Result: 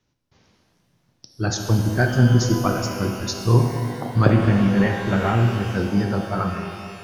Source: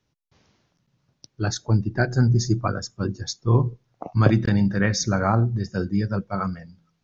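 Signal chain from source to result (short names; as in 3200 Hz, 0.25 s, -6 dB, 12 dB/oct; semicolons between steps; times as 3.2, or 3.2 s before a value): 4.32–5.76 CVSD 16 kbps; vibrato 12 Hz 32 cents; shimmer reverb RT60 2.1 s, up +12 st, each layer -8 dB, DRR 3.5 dB; gain +1.5 dB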